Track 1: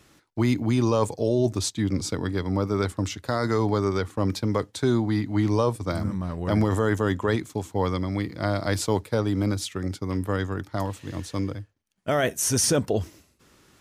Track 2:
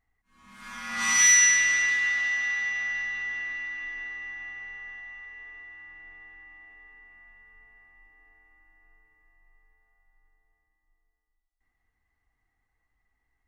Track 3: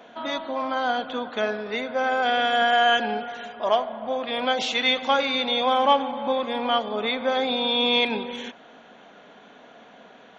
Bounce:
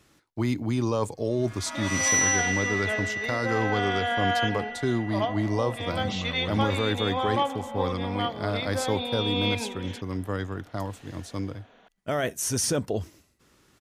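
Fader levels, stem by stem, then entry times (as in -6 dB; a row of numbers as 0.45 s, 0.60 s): -4.0 dB, -5.0 dB, -7.0 dB; 0.00 s, 0.85 s, 1.50 s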